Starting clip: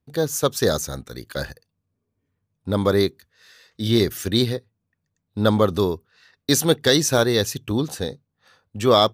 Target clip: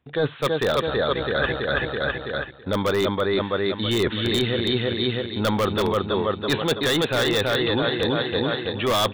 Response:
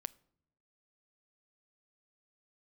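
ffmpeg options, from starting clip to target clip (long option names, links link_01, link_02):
-filter_complex "[0:a]aecho=1:1:329|658|987|1316|1645|1974:0.631|0.315|0.158|0.0789|0.0394|0.0197,aresample=8000,aresample=44100,aeval=exprs='0.708*(cos(1*acos(clip(val(0)/0.708,-1,1)))-cos(1*PI/2))+0.00398*(cos(5*acos(clip(val(0)/0.708,-1,1)))-cos(5*PI/2))':channel_layout=same,atempo=1,lowshelf=frequency=480:gain=-10.5,asplit=2[link_01][link_02];[link_02]aeval=exprs='(mod(5.31*val(0)+1,2)-1)/5.31':channel_layout=same,volume=-9.5dB[link_03];[link_01][link_03]amix=inputs=2:normalize=0,apsyclip=18.5dB,areverse,acompressor=threshold=-21dB:ratio=6,areverse"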